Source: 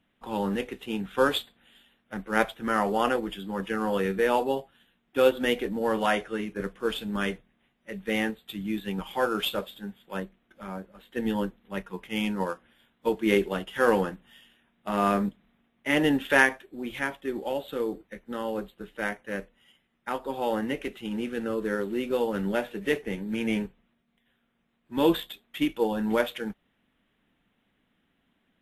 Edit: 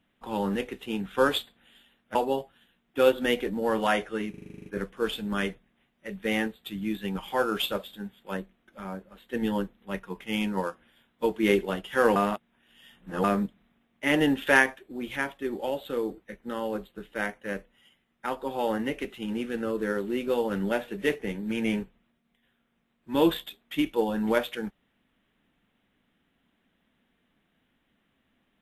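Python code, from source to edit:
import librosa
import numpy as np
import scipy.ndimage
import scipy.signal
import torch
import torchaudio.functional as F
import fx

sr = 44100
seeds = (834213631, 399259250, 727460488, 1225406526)

y = fx.edit(x, sr, fx.cut(start_s=2.15, length_s=2.19),
    fx.stutter(start_s=6.49, slice_s=0.04, count=10),
    fx.reverse_span(start_s=13.99, length_s=1.08), tone=tone)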